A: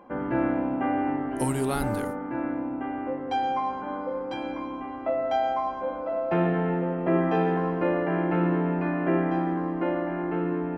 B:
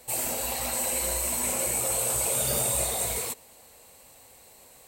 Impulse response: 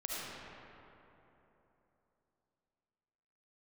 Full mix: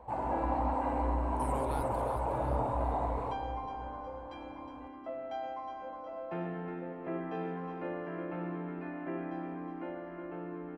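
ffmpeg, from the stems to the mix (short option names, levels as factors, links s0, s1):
-filter_complex "[0:a]volume=0.2,asplit=2[s0][s1];[s1]volume=0.398[s2];[1:a]equalizer=f=63:w=1.1:g=13.5,asoftclip=type=tanh:threshold=0.0501,lowpass=f=930:t=q:w=4.9,volume=0.631,asplit=2[s3][s4];[s4]volume=0.376[s5];[2:a]atrim=start_sample=2205[s6];[s5][s6]afir=irnorm=-1:irlink=0[s7];[s2]aecho=0:1:364|728|1092|1456|1820|2184:1|0.45|0.202|0.0911|0.041|0.0185[s8];[s0][s3][s7][s8]amix=inputs=4:normalize=0"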